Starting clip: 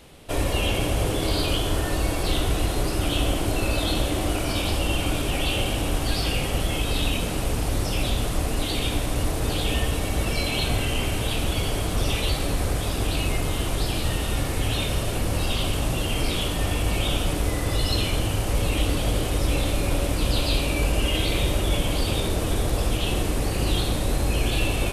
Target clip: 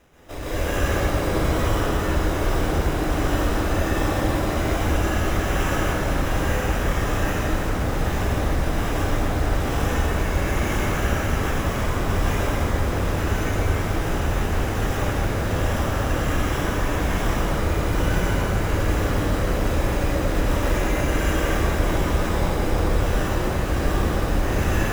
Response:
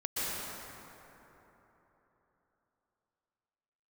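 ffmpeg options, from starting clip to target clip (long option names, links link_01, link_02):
-filter_complex "[0:a]acrusher=samples=10:mix=1:aa=0.000001[link_01];[1:a]atrim=start_sample=2205[link_02];[link_01][link_02]afir=irnorm=-1:irlink=0,volume=-5.5dB"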